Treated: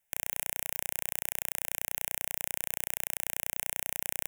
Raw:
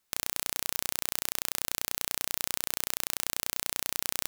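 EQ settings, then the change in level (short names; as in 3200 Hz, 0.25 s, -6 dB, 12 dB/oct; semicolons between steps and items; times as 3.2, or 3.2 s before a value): fixed phaser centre 1200 Hz, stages 6; 0.0 dB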